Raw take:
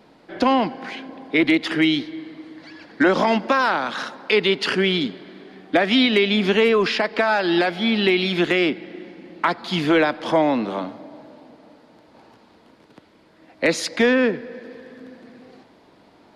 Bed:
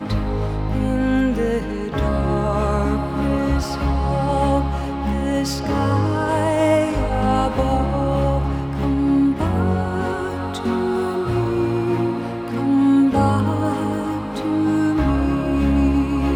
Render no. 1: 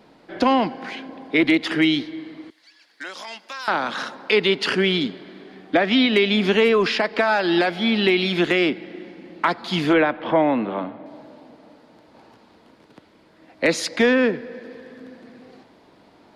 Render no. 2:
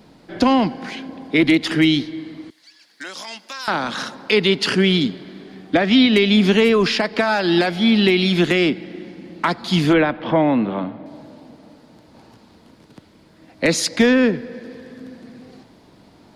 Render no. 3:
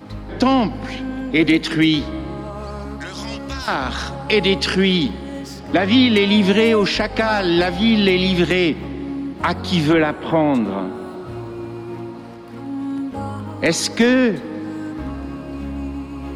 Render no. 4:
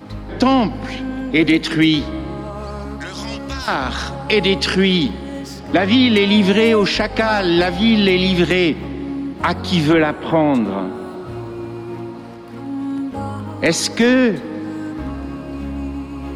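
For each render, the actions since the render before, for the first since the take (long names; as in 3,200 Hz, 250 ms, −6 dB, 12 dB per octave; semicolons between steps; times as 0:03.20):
0:02.50–0:03.68: first difference; 0:05.75–0:06.16: high-frequency loss of the air 82 metres; 0:09.93–0:11.06: low-pass filter 3,000 Hz 24 dB per octave
bass and treble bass +10 dB, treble +8 dB
mix in bed −10.5 dB
level +1.5 dB; brickwall limiter −3 dBFS, peak gain reduction 2.5 dB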